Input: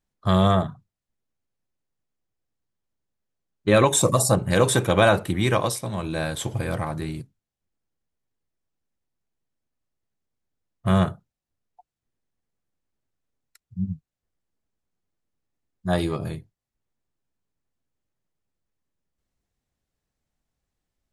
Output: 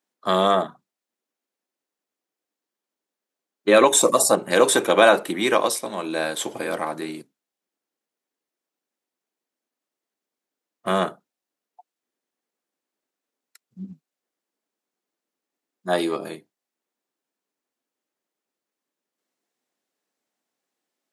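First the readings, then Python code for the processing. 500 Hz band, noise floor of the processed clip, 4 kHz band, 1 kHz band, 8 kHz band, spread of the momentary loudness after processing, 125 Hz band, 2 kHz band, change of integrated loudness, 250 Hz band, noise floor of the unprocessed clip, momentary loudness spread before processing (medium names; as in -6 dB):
+3.5 dB, under -85 dBFS, +3.5 dB, +3.5 dB, +3.5 dB, 17 LU, -15.0 dB, +3.5 dB, +2.0 dB, -2.0 dB, under -85 dBFS, 15 LU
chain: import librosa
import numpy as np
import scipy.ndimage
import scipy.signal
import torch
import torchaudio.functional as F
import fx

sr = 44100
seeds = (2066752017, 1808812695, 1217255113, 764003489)

y = scipy.signal.sosfilt(scipy.signal.butter(4, 260.0, 'highpass', fs=sr, output='sos'), x)
y = y * librosa.db_to_amplitude(3.5)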